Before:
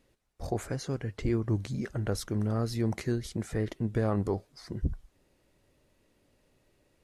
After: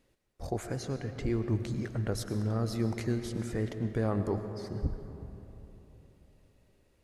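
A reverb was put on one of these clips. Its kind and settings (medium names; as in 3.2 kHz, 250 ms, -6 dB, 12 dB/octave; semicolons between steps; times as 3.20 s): algorithmic reverb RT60 3.5 s, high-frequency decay 0.5×, pre-delay 70 ms, DRR 8 dB; trim -2 dB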